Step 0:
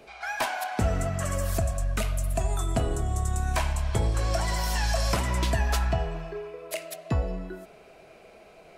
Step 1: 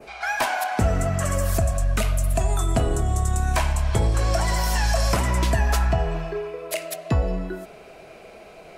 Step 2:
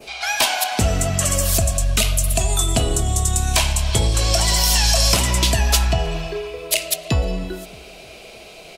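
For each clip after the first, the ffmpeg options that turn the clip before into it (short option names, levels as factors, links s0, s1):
-filter_complex "[0:a]adynamicequalizer=threshold=0.00501:dfrequency=3600:dqfactor=1.3:tfrequency=3600:tqfactor=1.3:attack=5:release=100:ratio=0.375:range=2:mode=cutabove:tftype=bell,asplit=2[s0][s1];[s1]alimiter=limit=0.0708:level=0:latency=1:release=84,volume=0.891[s2];[s0][s2]amix=inputs=2:normalize=0,volume=1.19"
-filter_complex "[0:a]highshelf=f=2300:t=q:w=1.5:g=10,asplit=2[s0][s1];[s1]adelay=309,lowpass=f=2000:p=1,volume=0.0794,asplit=2[s2][s3];[s3]adelay=309,lowpass=f=2000:p=1,volume=0.51,asplit=2[s4][s5];[s5]adelay=309,lowpass=f=2000:p=1,volume=0.51,asplit=2[s6][s7];[s7]adelay=309,lowpass=f=2000:p=1,volume=0.51[s8];[s0][s2][s4][s6][s8]amix=inputs=5:normalize=0,volume=1.26"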